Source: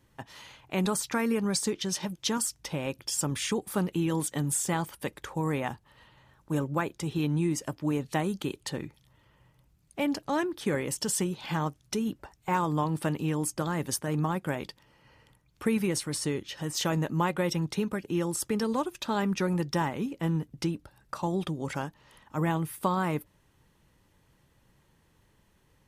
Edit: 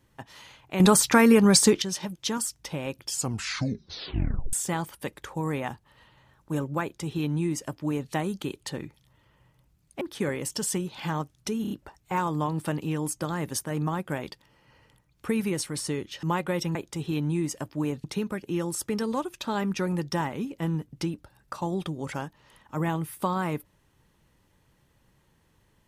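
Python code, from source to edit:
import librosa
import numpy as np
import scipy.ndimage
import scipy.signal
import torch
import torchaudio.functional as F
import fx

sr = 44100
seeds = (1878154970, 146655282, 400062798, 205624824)

y = fx.edit(x, sr, fx.clip_gain(start_s=0.8, length_s=1.02, db=10.5),
    fx.tape_stop(start_s=3.09, length_s=1.44),
    fx.duplicate(start_s=6.82, length_s=1.29, to_s=17.65),
    fx.cut(start_s=10.01, length_s=0.46),
    fx.stutter(start_s=12.08, slice_s=0.03, count=4),
    fx.cut(start_s=16.6, length_s=0.53), tone=tone)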